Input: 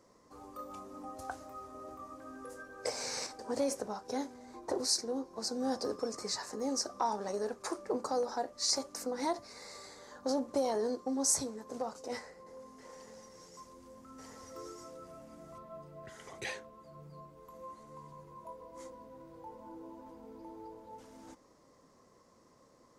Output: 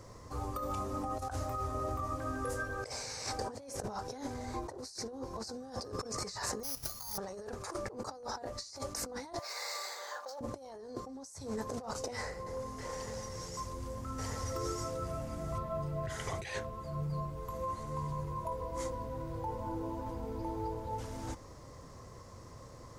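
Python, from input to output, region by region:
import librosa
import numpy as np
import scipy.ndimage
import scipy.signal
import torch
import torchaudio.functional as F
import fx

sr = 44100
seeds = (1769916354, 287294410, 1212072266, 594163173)

y = fx.chain(x, sr, fx.tone_stack(knobs='5-5-5'),
    fx.resample_bad(factor=8, down='none', up='zero_stuff'), at=(6.63, 7.18))
y = fx.chain(y, sr, fx.highpass(hz=570.0, slope=24),
    fx.resample_linear(factor=2), at=(9.39, 10.41))
y = fx.low_shelf_res(y, sr, hz=150.0, db=12.0, q=1.5)
y = fx.over_compress(y, sr, threshold_db=-46.0, ratio=-1.0)
y = y * 10.0 ** (6.0 / 20.0)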